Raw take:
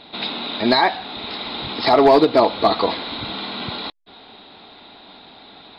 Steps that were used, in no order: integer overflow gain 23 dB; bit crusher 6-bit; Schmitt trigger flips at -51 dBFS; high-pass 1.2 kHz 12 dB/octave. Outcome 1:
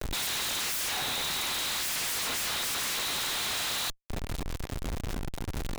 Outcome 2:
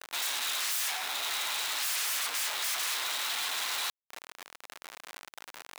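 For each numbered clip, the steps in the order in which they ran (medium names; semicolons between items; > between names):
integer overflow > bit crusher > high-pass > Schmitt trigger; bit crusher > integer overflow > Schmitt trigger > high-pass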